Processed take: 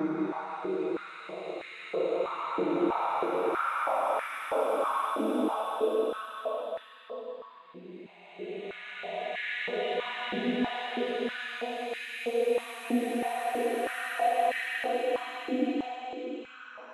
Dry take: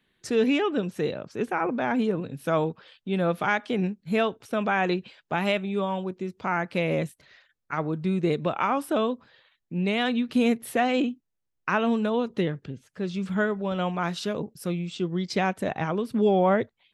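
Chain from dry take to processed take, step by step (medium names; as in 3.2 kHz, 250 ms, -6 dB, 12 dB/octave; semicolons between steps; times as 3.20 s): Paulstretch 4.8×, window 1.00 s, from 7.85 s; step-sequenced high-pass 3.1 Hz 300–1800 Hz; trim -7.5 dB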